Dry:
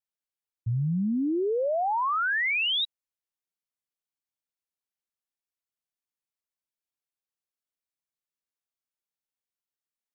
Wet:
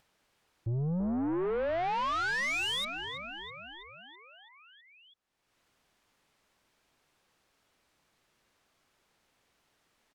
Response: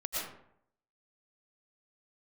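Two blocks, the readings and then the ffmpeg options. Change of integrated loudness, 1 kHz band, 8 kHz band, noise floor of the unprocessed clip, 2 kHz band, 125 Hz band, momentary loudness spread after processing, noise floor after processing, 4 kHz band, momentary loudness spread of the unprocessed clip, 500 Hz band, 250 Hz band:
-6.0 dB, -4.5 dB, no reading, under -85 dBFS, -5.0 dB, -4.5 dB, 18 LU, -75 dBFS, -6.0 dB, 8 LU, -4.5 dB, -4.5 dB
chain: -filter_complex "[0:a]aemphasis=mode=reproduction:type=75fm,asplit=8[s0][s1][s2][s3][s4][s5][s6][s7];[s1]adelay=327,afreqshift=-60,volume=0.251[s8];[s2]adelay=654,afreqshift=-120,volume=0.151[s9];[s3]adelay=981,afreqshift=-180,volume=0.0902[s10];[s4]adelay=1308,afreqshift=-240,volume=0.0543[s11];[s5]adelay=1635,afreqshift=-300,volume=0.0327[s12];[s6]adelay=1962,afreqshift=-360,volume=0.0195[s13];[s7]adelay=2289,afreqshift=-420,volume=0.0117[s14];[s0][s8][s9][s10][s11][s12][s13][s14]amix=inputs=8:normalize=0,aeval=exprs='(tanh(31.6*val(0)+0.1)-tanh(0.1))/31.6':c=same,acompressor=mode=upward:threshold=0.00224:ratio=2.5,volume=1.12"

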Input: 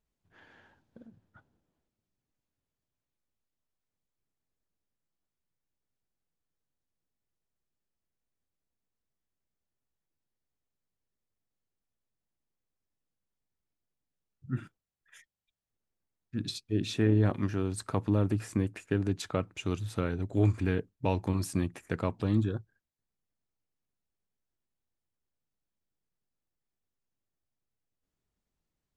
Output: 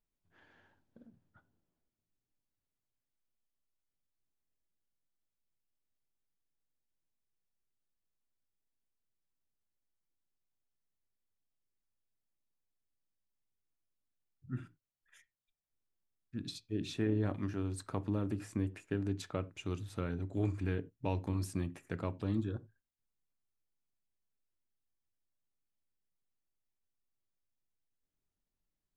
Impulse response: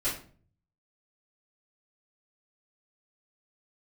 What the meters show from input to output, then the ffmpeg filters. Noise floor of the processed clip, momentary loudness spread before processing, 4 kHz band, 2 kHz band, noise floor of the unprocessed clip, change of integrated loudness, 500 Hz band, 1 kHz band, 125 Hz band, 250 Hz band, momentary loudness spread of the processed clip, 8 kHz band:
under -85 dBFS, 10 LU, -7.5 dB, -7.0 dB, under -85 dBFS, -7.0 dB, -7.0 dB, -7.0 dB, -7.5 dB, -6.0 dB, 10 LU, -7.5 dB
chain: -filter_complex "[0:a]asplit=2[s0][s1];[s1]lowpass=4800[s2];[1:a]atrim=start_sample=2205,atrim=end_sample=4410,lowshelf=f=440:g=10[s3];[s2][s3]afir=irnorm=-1:irlink=0,volume=0.0708[s4];[s0][s4]amix=inputs=2:normalize=0,volume=0.422"

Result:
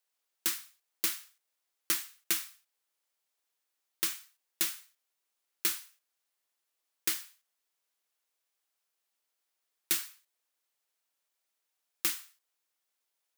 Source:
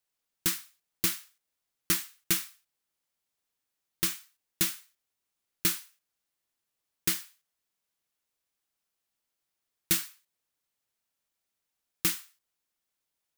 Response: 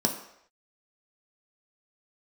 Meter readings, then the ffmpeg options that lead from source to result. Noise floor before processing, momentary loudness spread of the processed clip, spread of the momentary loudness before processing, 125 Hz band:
-85 dBFS, 11 LU, 11 LU, -18.0 dB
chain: -filter_complex "[0:a]highpass=400,asplit=2[s0][s1];[s1]acompressor=threshold=0.0224:ratio=6,volume=1.26[s2];[s0][s2]amix=inputs=2:normalize=0,volume=0.501"

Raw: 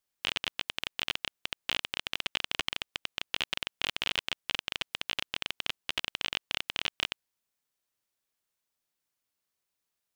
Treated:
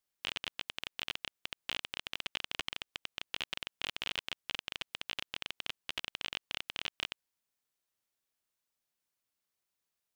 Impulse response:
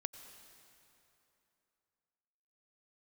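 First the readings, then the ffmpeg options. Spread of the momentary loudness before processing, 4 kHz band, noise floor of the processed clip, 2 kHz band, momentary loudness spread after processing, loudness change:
4 LU, -6.0 dB, under -85 dBFS, -6.0 dB, 4 LU, -6.0 dB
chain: -af "alimiter=limit=0.168:level=0:latency=1:release=68,volume=0.75"

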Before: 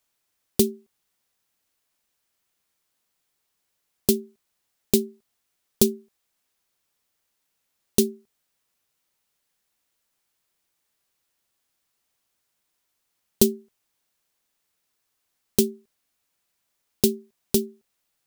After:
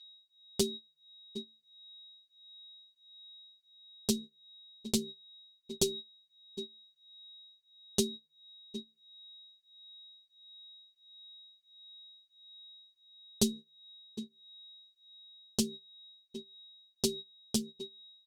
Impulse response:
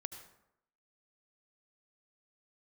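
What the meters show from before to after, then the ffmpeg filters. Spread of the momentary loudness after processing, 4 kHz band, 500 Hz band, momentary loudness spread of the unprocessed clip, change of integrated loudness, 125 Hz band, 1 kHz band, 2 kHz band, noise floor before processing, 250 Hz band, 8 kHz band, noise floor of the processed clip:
22 LU, -2.5 dB, -11.5 dB, 13 LU, -12.5 dB, -9.5 dB, -7.0 dB, -7.5 dB, -77 dBFS, -10.0 dB, -7.5 dB, -74 dBFS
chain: -filter_complex "[0:a]equalizer=f=125:t=o:w=1:g=4,equalizer=f=1000:t=o:w=1:g=-7,equalizer=f=4000:t=o:w=1:g=3,asplit=2[s0][s1];[s1]adelay=758,volume=0.251,highshelf=f=4000:g=-17.1[s2];[s0][s2]amix=inputs=2:normalize=0,aeval=exprs='val(0)+0.0141*sin(2*PI*3800*n/s)':c=same,areverse,acompressor=mode=upward:threshold=0.0224:ratio=2.5,areverse,lowpass=7300,highshelf=f=3600:g=9,bandreject=f=156:t=h:w=4,bandreject=f=312:t=h:w=4,bandreject=f=468:t=h:w=4,agate=range=0.112:threshold=0.0355:ratio=16:detection=peak,asplit=2[s3][s4];[s4]acompressor=threshold=0.01:ratio=6,volume=1.33[s5];[s3][s5]amix=inputs=2:normalize=0,asplit=2[s6][s7];[s7]adelay=7.3,afreqshift=1.5[s8];[s6][s8]amix=inputs=2:normalize=1,volume=0.355"

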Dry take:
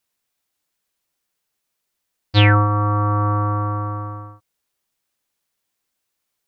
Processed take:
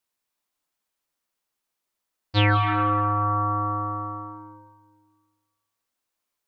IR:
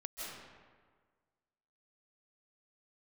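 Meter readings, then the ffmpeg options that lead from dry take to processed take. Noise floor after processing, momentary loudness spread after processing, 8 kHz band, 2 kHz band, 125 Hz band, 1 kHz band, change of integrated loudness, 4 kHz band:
-83 dBFS, 16 LU, no reading, -4.5 dB, -8.0 dB, -1.5 dB, -5.0 dB, -5.5 dB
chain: -filter_complex "[0:a]asplit=2[s0][s1];[s1]equalizer=f=125:t=o:w=1:g=-11,equalizer=f=250:t=o:w=1:g=6,equalizer=f=1000:t=o:w=1:g=9[s2];[1:a]atrim=start_sample=2205[s3];[s2][s3]afir=irnorm=-1:irlink=0,volume=0.708[s4];[s0][s4]amix=inputs=2:normalize=0,volume=0.355"

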